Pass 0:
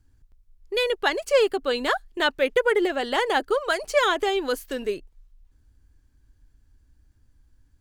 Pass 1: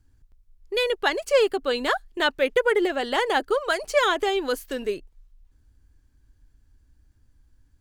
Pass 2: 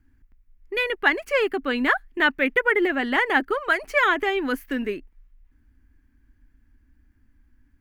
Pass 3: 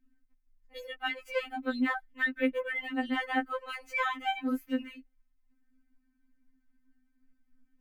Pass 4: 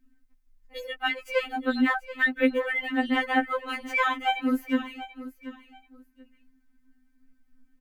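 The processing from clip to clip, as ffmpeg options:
ffmpeg -i in.wav -af anull out.wav
ffmpeg -i in.wav -af "equalizer=frequency=125:width_type=o:width=1:gain=-6,equalizer=frequency=250:width_type=o:width=1:gain=11,equalizer=frequency=500:width_type=o:width=1:gain=-7,equalizer=frequency=2000:width_type=o:width=1:gain=10,equalizer=frequency=4000:width_type=o:width=1:gain=-8,equalizer=frequency=8000:width_type=o:width=1:gain=-10" out.wav
ffmpeg -i in.wav -af "afftfilt=real='re*3.46*eq(mod(b,12),0)':imag='im*3.46*eq(mod(b,12),0)':win_size=2048:overlap=0.75,volume=-8.5dB" out.wav
ffmpeg -i in.wav -af "aecho=1:1:734|1468:0.188|0.0396,volume=6dB" out.wav

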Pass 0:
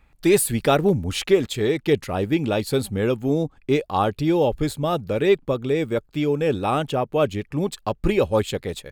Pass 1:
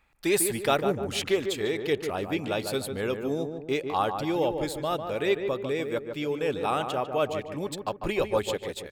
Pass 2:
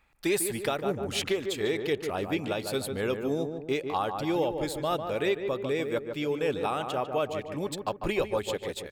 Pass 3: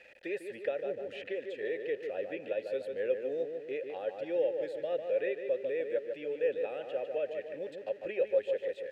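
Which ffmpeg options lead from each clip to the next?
ffmpeg -i in.wav -filter_complex "[0:a]lowshelf=frequency=360:gain=-11,asplit=2[link_01][link_02];[link_02]adelay=148,lowpass=frequency=1500:poles=1,volume=-6dB,asplit=2[link_03][link_04];[link_04]adelay=148,lowpass=frequency=1500:poles=1,volume=0.46,asplit=2[link_05][link_06];[link_06]adelay=148,lowpass=frequency=1500:poles=1,volume=0.46,asplit=2[link_07][link_08];[link_08]adelay=148,lowpass=frequency=1500:poles=1,volume=0.46,asplit=2[link_09][link_10];[link_10]adelay=148,lowpass=frequency=1500:poles=1,volume=0.46,asplit=2[link_11][link_12];[link_12]adelay=148,lowpass=frequency=1500:poles=1,volume=0.46[link_13];[link_03][link_05][link_07][link_09][link_11][link_13]amix=inputs=6:normalize=0[link_14];[link_01][link_14]amix=inputs=2:normalize=0,volume=-3dB" out.wav
ffmpeg -i in.wav -af "alimiter=limit=-17.5dB:level=0:latency=1:release=316" out.wav
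ffmpeg -i in.wav -filter_complex "[0:a]aeval=exprs='val(0)+0.5*0.00944*sgn(val(0))':channel_layout=same,asplit=3[link_01][link_02][link_03];[link_01]bandpass=frequency=530:width_type=q:width=8,volume=0dB[link_04];[link_02]bandpass=frequency=1840:width_type=q:width=8,volume=-6dB[link_05];[link_03]bandpass=frequency=2480:width_type=q:width=8,volume=-9dB[link_06];[link_04][link_05][link_06]amix=inputs=3:normalize=0,acrossover=split=2700[link_07][link_08];[link_08]acompressor=threshold=-60dB:ratio=4:attack=1:release=60[link_09];[link_07][link_09]amix=inputs=2:normalize=0,volume=3dB" out.wav

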